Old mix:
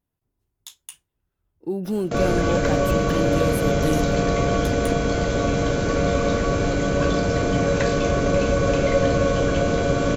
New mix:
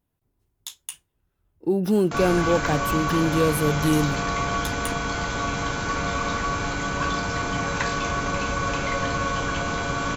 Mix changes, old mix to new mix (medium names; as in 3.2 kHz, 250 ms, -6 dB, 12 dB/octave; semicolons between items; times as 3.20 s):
speech +4.5 dB; background: add resonant low shelf 720 Hz -7 dB, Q 3